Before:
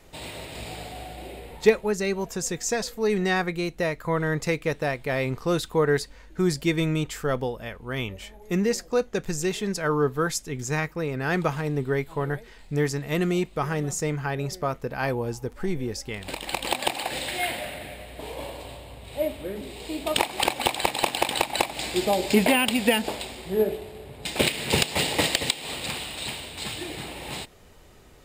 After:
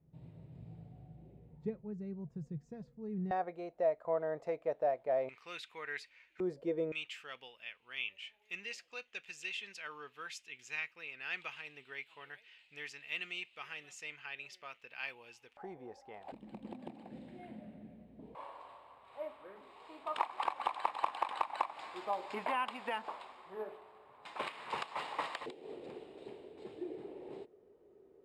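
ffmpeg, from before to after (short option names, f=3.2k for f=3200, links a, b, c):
-af "asetnsamples=n=441:p=0,asendcmd='3.31 bandpass f 640;5.29 bandpass f 2400;6.4 bandpass f 510;6.92 bandpass f 2700;15.57 bandpass f 770;16.32 bandpass f 210;18.35 bandpass f 1100;25.46 bandpass f 400',bandpass=f=140:t=q:w=5:csg=0"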